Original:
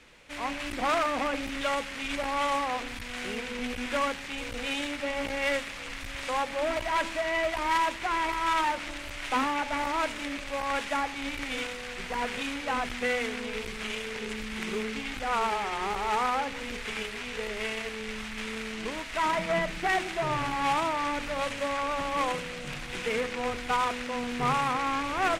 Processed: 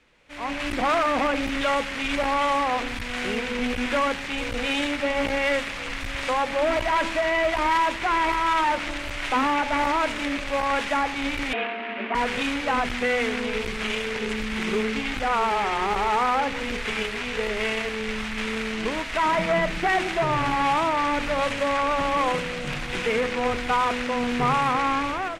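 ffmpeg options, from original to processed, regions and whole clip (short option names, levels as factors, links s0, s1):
-filter_complex "[0:a]asettb=1/sr,asplit=3[s0][s1][s2];[s0]atrim=end=11.534[s3];[s1]atrim=start=11.53:end=12.15,asetpts=PTS-STARTPTS,afade=t=in:d=0.004:c=qsin,afade=t=out:st=0.616:d=0.004:c=qsin,lowpass=f=2600:w=0.5412,lowpass=f=2600:w=1.3066,afreqshift=200[s4];[s2]atrim=start=12.146[s5];[s3][s4]acrossfade=d=0.004:c1=hsin:c2=qsin[s6];[s6][s5]acrossfade=d=0.004:c1=qsin:c2=hsin,highshelf=f=5300:g=-7.5,alimiter=limit=0.0668:level=0:latency=1:release=17,dynaudnorm=f=130:g=7:m=4.73,volume=0.531"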